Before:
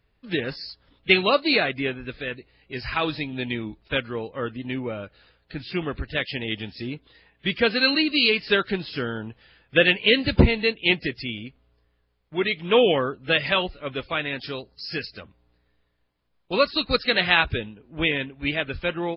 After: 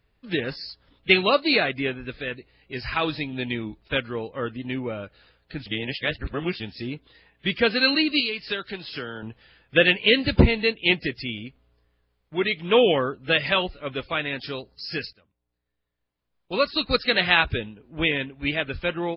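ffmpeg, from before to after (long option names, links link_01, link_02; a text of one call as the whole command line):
ffmpeg -i in.wav -filter_complex "[0:a]asettb=1/sr,asplit=3[link_01][link_02][link_03];[link_01]atrim=end=8.204[link_04];[link_02]atrim=start=8.2:end=9.23,asetpts=PTS-STARTPTS,afade=type=in:duration=0.004:curve=qsin,afade=type=out:start_time=1.026:duration=0.004:curve=qsin,acrossover=split=100|420|3100[link_05][link_06][link_07][link_08];[link_05]acompressor=threshold=-57dB:ratio=3[link_09];[link_06]acompressor=threshold=-41dB:ratio=3[link_10];[link_07]acompressor=threshold=-33dB:ratio=3[link_11];[link_08]acompressor=threshold=-31dB:ratio=3[link_12];[link_09][link_10][link_11][link_12]amix=inputs=4:normalize=0[link_13];[link_03]atrim=start=9.226[link_14];[link_04][link_13]acrossfade=duration=0.004:curve1=hsin:curve2=qsin[link_15];[link_15][link_14]acrossfade=duration=0.004:curve1=qsin:curve2=hsin,asplit=4[link_16][link_17][link_18][link_19];[link_16]atrim=end=5.662[link_20];[link_17]atrim=start=5.658:end=6.602,asetpts=PTS-STARTPTS,areverse[link_21];[link_18]atrim=start=6.598:end=15.13,asetpts=PTS-STARTPTS,afade=type=out:start_time=8.528:duration=0.004:curve=hsin:silence=0.1[link_22];[link_19]atrim=start=15.13,asetpts=PTS-STARTPTS,afade=type=in:duration=1.7:curve=qua:silence=0.1[link_23];[link_20][link_21]acrossfade=duration=0.004:curve1=hsin:curve2=hsin[link_24];[link_22][link_23]concat=n=2:v=0:a=1[link_25];[link_24][link_25]acrossfade=duration=0.004:curve1=hsin:curve2=hsin" out.wav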